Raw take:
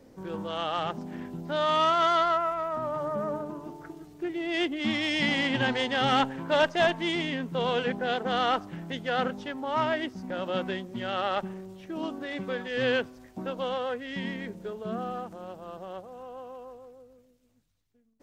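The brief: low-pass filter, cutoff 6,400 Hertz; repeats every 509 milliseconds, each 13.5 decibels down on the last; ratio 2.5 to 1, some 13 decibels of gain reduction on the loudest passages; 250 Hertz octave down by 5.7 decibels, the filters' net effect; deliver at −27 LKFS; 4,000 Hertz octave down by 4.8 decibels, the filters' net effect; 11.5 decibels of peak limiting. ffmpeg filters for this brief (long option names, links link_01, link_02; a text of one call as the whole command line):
ffmpeg -i in.wav -af "lowpass=6400,equalizer=frequency=250:width_type=o:gain=-7.5,equalizer=frequency=4000:width_type=o:gain=-6.5,acompressor=threshold=-41dB:ratio=2.5,alimiter=level_in=13.5dB:limit=-24dB:level=0:latency=1,volume=-13.5dB,aecho=1:1:509|1018:0.211|0.0444,volume=19dB" out.wav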